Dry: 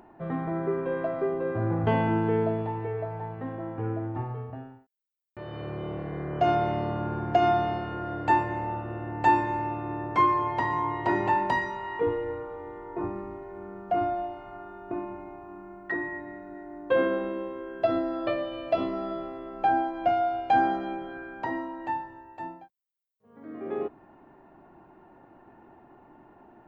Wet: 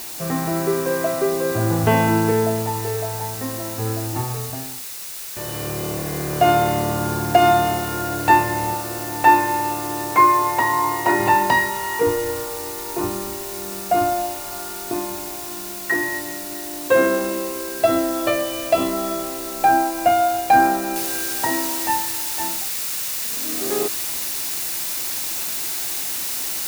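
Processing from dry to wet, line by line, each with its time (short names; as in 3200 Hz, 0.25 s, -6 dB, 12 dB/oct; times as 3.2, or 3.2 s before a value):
2.31–4.13 notch comb 160 Hz
8.74–11.2 tone controls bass -7 dB, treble -11 dB
20.96 noise floor step -48 dB -41 dB
whole clip: high shelf 2200 Hz +9 dB; notch 3200 Hz, Q 17; gain +7 dB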